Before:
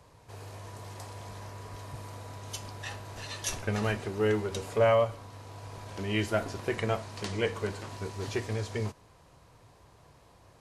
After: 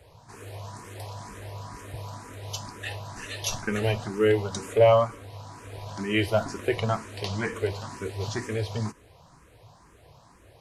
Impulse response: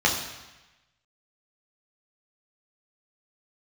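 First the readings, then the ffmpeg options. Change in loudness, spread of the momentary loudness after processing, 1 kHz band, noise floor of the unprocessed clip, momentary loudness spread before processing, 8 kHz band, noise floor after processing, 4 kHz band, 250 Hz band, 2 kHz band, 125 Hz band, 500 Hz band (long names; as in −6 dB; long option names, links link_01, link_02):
+5.0 dB, 17 LU, +4.5 dB, −59 dBFS, 17 LU, +3.0 dB, −56 dBFS, +4.0 dB, +3.5 dB, +3.0 dB, +3.5 dB, +5.0 dB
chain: -filter_complex "[0:a]asplit=2[link_01][link_02];[link_02]afreqshift=2.1[link_03];[link_01][link_03]amix=inputs=2:normalize=1,volume=6.5dB"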